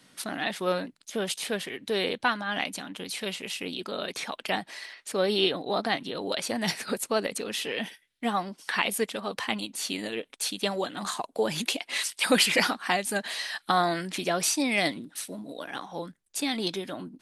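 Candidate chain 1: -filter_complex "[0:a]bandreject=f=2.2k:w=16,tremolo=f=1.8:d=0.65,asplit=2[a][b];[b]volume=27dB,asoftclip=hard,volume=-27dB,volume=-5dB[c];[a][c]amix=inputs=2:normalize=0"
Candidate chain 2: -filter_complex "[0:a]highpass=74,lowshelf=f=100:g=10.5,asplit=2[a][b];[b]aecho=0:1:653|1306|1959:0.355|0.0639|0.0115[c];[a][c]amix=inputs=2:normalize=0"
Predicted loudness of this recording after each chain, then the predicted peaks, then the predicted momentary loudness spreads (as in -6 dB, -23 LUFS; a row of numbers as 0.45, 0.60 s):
-29.5, -28.5 LUFS; -10.0, -8.5 dBFS; 11, 9 LU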